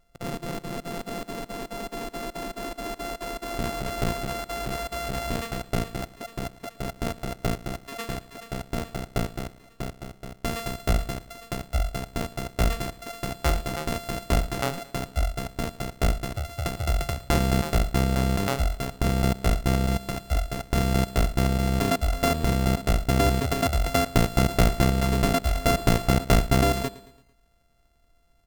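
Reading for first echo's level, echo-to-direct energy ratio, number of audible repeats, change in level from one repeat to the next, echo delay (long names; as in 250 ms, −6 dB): −18.5 dB, −17.5 dB, 3, −6.0 dB, 112 ms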